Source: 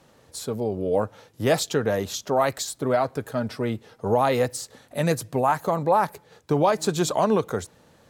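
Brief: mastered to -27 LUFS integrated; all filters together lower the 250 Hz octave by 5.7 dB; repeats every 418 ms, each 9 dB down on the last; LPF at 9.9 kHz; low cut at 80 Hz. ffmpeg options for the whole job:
-af "highpass=80,lowpass=9900,equalizer=f=250:t=o:g=-8,aecho=1:1:418|836|1254|1672:0.355|0.124|0.0435|0.0152,volume=0.891"

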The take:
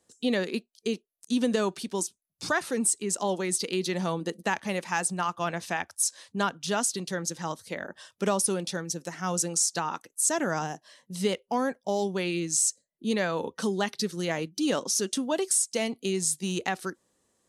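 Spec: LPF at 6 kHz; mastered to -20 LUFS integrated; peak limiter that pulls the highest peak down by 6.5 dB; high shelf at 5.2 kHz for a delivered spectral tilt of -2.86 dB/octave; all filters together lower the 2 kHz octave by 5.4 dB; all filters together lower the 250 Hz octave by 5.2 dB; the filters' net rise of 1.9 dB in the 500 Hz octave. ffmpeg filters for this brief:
-af "lowpass=6000,equalizer=f=250:t=o:g=-9,equalizer=f=500:t=o:g=5.5,equalizer=f=2000:t=o:g=-8.5,highshelf=f=5200:g=7.5,volume=3.76,alimiter=limit=0.376:level=0:latency=1"

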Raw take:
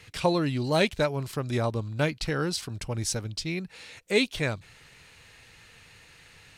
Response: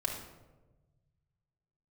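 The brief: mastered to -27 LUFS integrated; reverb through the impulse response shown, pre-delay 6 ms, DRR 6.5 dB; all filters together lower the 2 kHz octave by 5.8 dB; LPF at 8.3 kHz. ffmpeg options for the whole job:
-filter_complex "[0:a]lowpass=8300,equalizer=f=2000:t=o:g=-7.5,asplit=2[s0][s1];[1:a]atrim=start_sample=2205,adelay=6[s2];[s1][s2]afir=irnorm=-1:irlink=0,volume=0.299[s3];[s0][s3]amix=inputs=2:normalize=0,volume=1.19"

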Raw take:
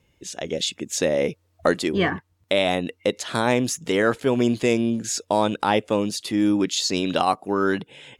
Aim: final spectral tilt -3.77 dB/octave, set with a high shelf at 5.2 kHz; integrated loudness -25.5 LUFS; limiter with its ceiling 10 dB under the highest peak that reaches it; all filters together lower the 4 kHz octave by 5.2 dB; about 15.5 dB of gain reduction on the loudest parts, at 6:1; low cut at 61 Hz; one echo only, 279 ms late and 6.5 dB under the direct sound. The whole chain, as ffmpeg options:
-af "highpass=61,equalizer=f=4000:t=o:g=-4,highshelf=f=5200:g=-6,acompressor=threshold=0.0251:ratio=6,alimiter=level_in=1.12:limit=0.0631:level=0:latency=1,volume=0.891,aecho=1:1:279:0.473,volume=3.55"

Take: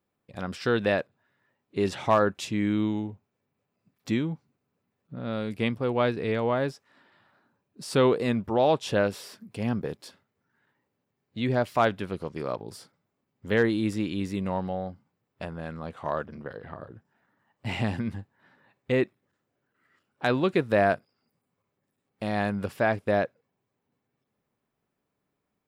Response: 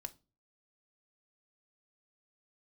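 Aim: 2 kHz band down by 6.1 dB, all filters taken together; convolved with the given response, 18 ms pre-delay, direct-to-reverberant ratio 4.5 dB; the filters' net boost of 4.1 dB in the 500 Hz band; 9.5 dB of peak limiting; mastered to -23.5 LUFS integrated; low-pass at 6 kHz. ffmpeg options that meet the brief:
-filter_complex "[0:a]lowpass=6000,equalizer=f=500:t=o:g=5.5,equalizer=f=2000:t=o:g=-8.5,alimiter=limit=0.133:level=0:latency=1,asplit=2[s0][s1];[1:a]atrim=start_sample=2205,adelay=18[s2];[s1][s2]afir=irnorm=-1:irlink=0,volume=0.944[s3];[s0][s3]amix=inputs=2:normalize=0,volume=1.68"

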